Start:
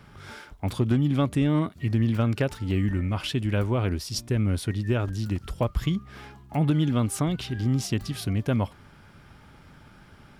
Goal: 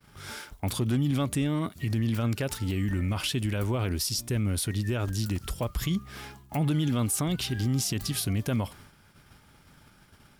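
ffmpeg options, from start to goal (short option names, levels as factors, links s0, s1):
-af "agate=range=0.0224:threshold=0.00631:ratio=3:detection=peak,crystalizer=i=2.5:c=0,alimiter=limit=0.106:level=0:latency=1:release=43"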